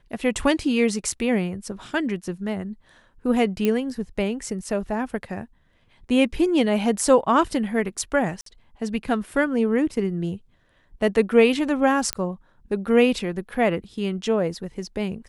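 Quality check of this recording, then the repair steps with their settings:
3.65 pop -10 dBFS
8.41–8.46 gap 53 ms
12.13 pop -6 dBFS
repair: de-click; interpolate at 8.41, 53 ms

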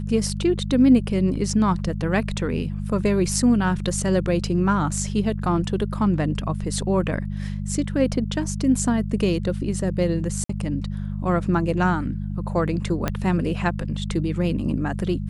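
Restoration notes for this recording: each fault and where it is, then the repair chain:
hum 50 Hz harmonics 4 -28 dBFS
10.44–10.49 gap 54 ms
13.08 pop -8 dBFS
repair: de-click; de-hum 50 Hz, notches 4; interpolate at 10.44, 54 ms

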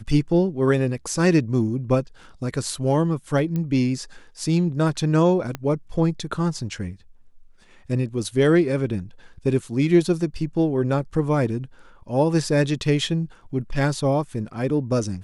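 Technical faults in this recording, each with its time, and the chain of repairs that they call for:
3.56 pop -16 dBFS
5.55 pop -14 dBFS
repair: de-click

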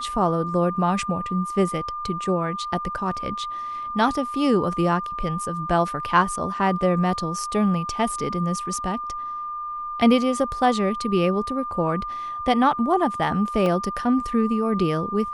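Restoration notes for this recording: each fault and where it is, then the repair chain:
tone 1200 Hz -28 dBFS
13.66 gap 2.4 ms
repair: notch 1200 Hz, Q 30; interpolate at 13.66, 2.4 ms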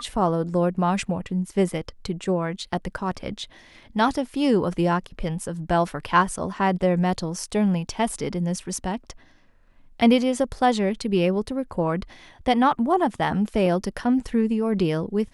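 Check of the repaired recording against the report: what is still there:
none

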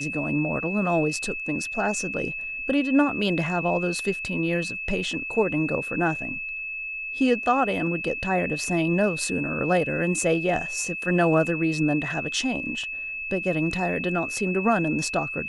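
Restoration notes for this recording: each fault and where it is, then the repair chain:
tone 2600 Hz -30 dBFS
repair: notch 2600 Hz, Q 30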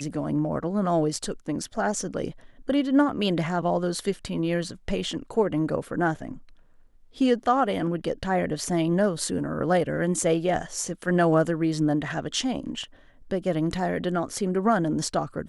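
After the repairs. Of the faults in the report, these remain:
none

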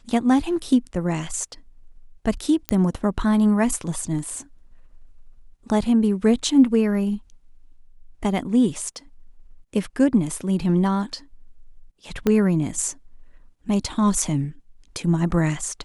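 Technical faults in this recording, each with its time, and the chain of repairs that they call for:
2.69 pop -8 dBFS
12.27 pop -8 dBFS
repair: de-click

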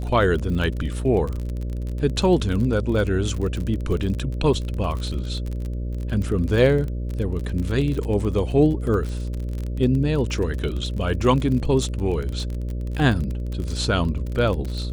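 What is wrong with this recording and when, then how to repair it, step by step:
buzz 60 Hz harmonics 10 -27 dBFS
crackle 31/s -27 dBFS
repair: de-click; de-hum 60 Hz, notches 10

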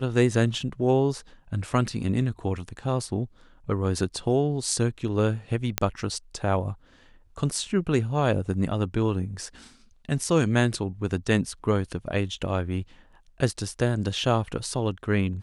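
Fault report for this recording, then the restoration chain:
5.78 pop -4 dBFS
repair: de-click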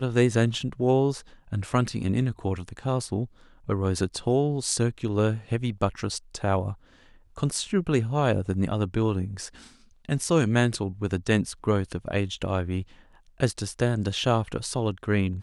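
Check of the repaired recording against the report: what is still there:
none

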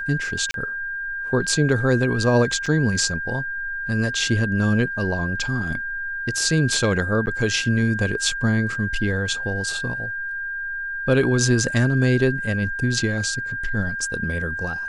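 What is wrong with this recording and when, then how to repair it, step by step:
tone 1600 Hz -26 dBFS
0.51–0.54 gap 32 ms
2.66 gap 4.5 ms
7.26–7.27 gap 9.8 ms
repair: notch 1600 Hz, Q 30; interpolate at 0.51, 32 ms; interpolate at 2.66, 4.5 ms; interpolate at 7.26, 9.8 ms

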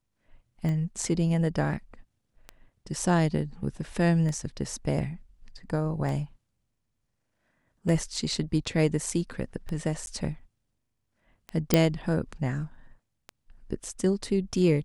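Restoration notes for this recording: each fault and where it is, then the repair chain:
tick 33 1/3 rpm -22 dBFS
10.06–10.07 gap 11 ms
11.74 pop -5 dBFS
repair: de-click; interpolate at 10.06, 11 ms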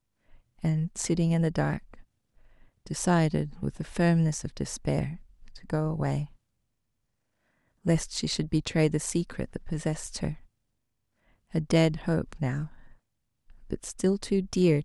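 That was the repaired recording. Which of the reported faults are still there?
none

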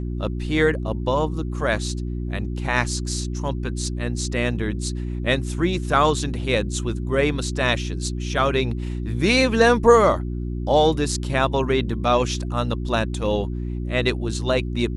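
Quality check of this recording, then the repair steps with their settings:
hum 60 Hz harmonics 6 -27 dBFS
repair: de-hum 60 Hz, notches 6

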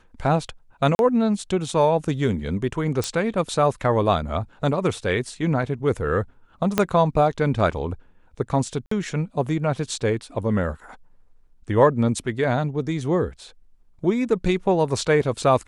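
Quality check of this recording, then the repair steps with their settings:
0.95–0.99 gap 41 ms
3.04 pop
6.78 pop -4 dBFS
8.86–8.91 gap 54 ms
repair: de-click; interpolate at 0.95, 41 ms; interpolate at 8.86, 54 ms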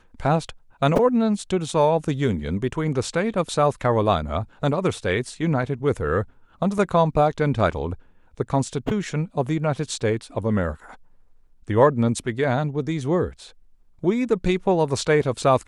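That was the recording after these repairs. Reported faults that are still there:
6.78 pop

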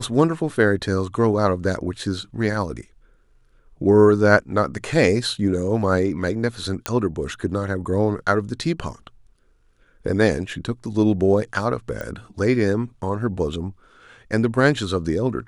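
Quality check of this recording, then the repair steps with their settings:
6.86 pop -5 dBFS
12.01 pop -17 dBFS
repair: de-click

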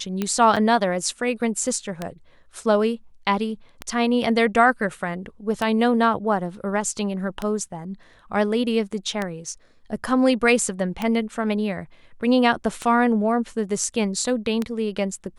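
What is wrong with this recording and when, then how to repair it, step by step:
tick 33 1/3 rpm -11 dBFS
0.56–0.57 gap 6.2 ms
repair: de-click; interpolate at 0.56, 6.2 ms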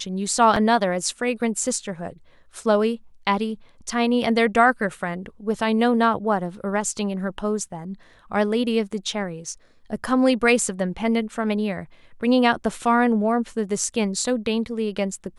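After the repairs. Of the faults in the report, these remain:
none

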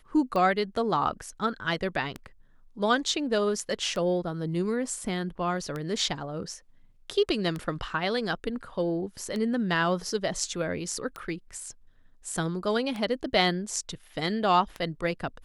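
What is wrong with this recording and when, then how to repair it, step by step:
tick 33 1/3 rpm -20 dBFS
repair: de-click

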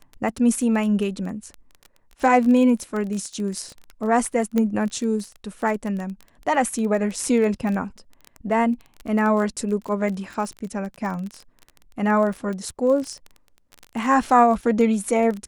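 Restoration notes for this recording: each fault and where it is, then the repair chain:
crackle 20/s -27 dBFS
4.58 pop -11 dBFS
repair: de-click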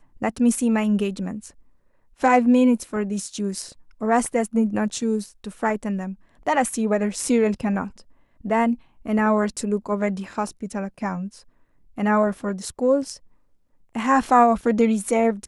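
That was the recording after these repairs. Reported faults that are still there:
none

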